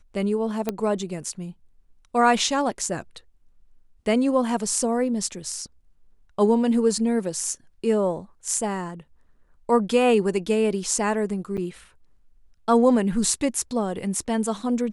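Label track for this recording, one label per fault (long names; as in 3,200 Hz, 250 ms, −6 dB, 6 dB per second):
0.690000	0.690000	click −11 dBFS
11.570000	11.580000	drop-out 7.5 ms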